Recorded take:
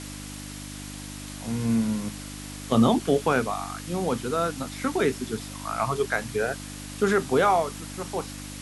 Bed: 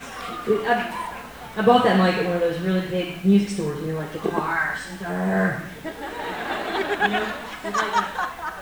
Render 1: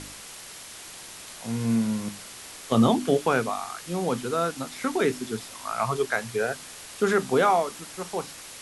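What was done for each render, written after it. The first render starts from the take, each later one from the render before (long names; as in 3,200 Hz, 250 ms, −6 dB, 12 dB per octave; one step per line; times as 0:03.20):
hum removal 50 Hz, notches 6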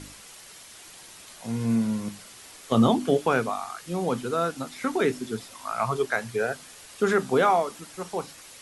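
broadband denoise 6 dB, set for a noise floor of −43 dBFS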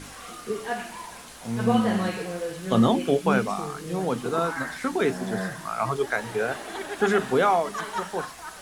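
mix in bed −9.5 dB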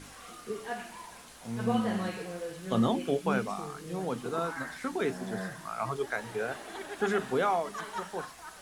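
level −7 dB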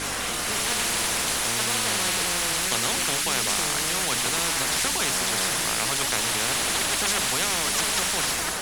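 automatic gain control gain up to 6 dB
every bin compressed towards the loudest bin 10 to 1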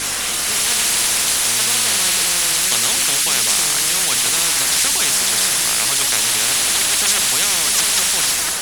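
high-shelf EQ 2,100 Hz +10.5 dB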